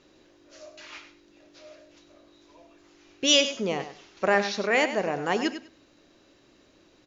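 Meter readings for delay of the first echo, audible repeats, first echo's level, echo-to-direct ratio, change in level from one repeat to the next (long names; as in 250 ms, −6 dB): 99 ms, 2, −11.0 dB, −11.0 dB, −14.5 dB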